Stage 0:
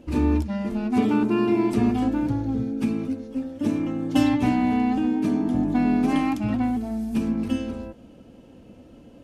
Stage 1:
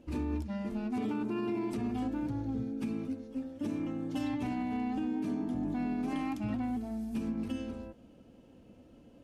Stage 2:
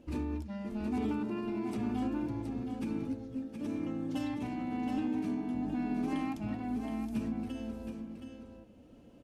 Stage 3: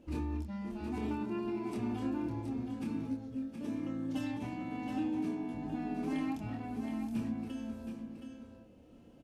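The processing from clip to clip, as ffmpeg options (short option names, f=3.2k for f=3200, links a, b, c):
-af "alimiter=limit=-17dB:level=0:latency=1:release=74,volume=-9dB"
-af "tremolo=f=0.99:d=0.34,aecho=1:1:721:0.447"
-filter_complex "[0:a]asplit=2[a][b];[b]adelay=26,volume=-4dB[c];[a][c]amix=inputs=2:normalize=0,volume=-2.5dB"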